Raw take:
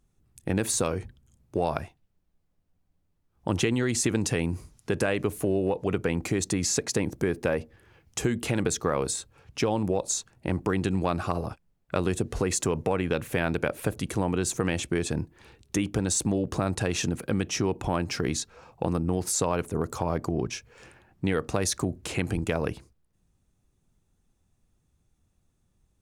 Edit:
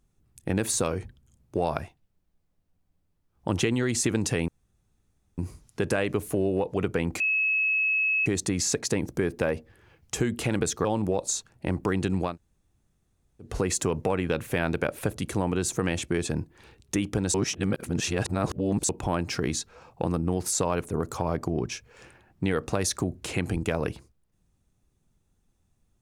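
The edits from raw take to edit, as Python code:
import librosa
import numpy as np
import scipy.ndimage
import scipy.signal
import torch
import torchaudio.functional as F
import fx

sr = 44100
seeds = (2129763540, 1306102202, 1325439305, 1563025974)

y = fx.edit(x, sr, fx.insert_room_tone(at_s=4.48, length_s=0.9),
    fx.insert_tone(at_s=6.3, length_s=1.06, hz=2580.0, db=-21.5),
    fx.cut(start_s=8.89, length_s=0.77),
    fx.room_tone_fill(start_s=11.11, length_s=1.17, crossfade_s=0.16),
    fx.reverse_span(start_s=16.15, length_s=1.55), tone=tone)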